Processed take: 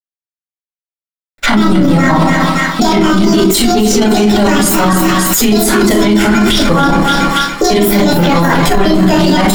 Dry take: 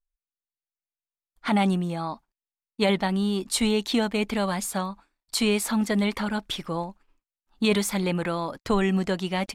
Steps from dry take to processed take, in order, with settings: trilling pitch shifter +8.5 st, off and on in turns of 0.104 s; in parallel at +3 dB: compressor 12:1, threshold -33 dBFS, peak gain reduction 16 dB; on the sum: sample leveller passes 2; crossover distortion -50.5 dBFS; on a send: split-band echo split 1300 Hz, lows 0.125 s, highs 0.285 s, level -11 dB; on the sum: shoebox room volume 240 m³, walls furnished, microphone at 6.9 m; maximiser +17.5 dB; gain -1 dB

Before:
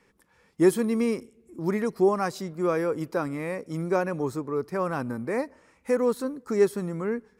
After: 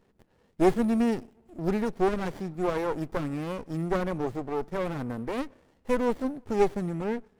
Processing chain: running maximum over 33 samples

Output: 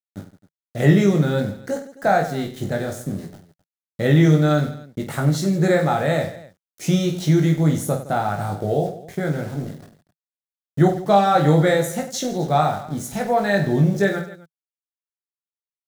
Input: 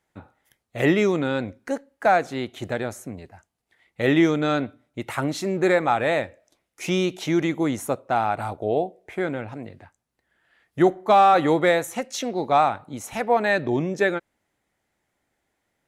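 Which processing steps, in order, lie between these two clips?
dynamic EQ 300 Hz, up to -6 dB, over -33 dBFS, Q 1.2; sample gate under -40.5 dBFS; fifteen-band EQ 160 Hz +11 dB, 1000 Hz -9 dB, 2500 Hz -11 dB; on a send: reverse bouncing-ball echo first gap 20 ms, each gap 1.5×, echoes 5; on the sum: gain +3 dB

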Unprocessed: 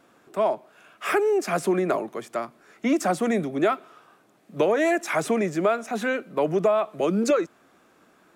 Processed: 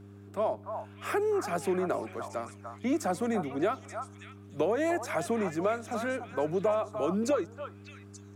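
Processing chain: buzz 100 Hz, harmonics 4, -43 dBFS -4 dB/oct; delay with a stepping band-pass 0.294 s, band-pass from 1000 Hz, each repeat 1.4 oct, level -3.5 dB; dynamic EQ 2400 Hz, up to -4 dB, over -42 dBFS, Q 0.97; gain -6.5 dB

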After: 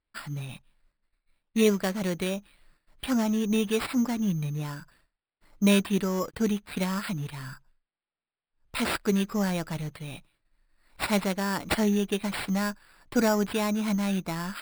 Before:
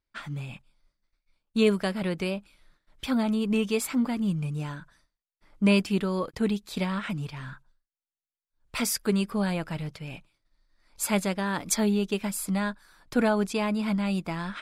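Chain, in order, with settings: sample-and-hold 7×

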